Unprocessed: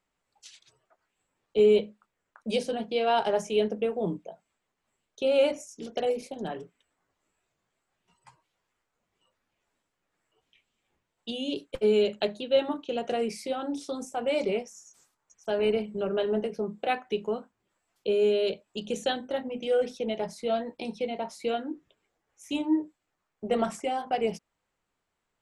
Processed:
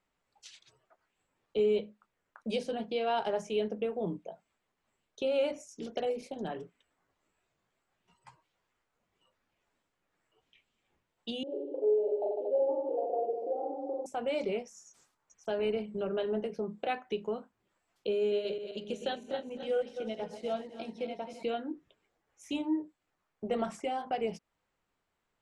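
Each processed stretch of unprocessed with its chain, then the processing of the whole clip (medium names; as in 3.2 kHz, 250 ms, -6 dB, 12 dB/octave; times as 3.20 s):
11.43–14.06 s: elliptic band-pass 320–830 Hz + reverse bouncing-ball echo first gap 40 ms, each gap 1.25×, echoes 6, each echo -2 dB
18.19–21.43 s: backward echo that repeats 131 ms, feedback 65%, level -8 dB + upward expansion, over -37 dBFS
whole clip: treble shelf 9 kHz -11 dB; compression 1.5:1, threshold -38 dBFS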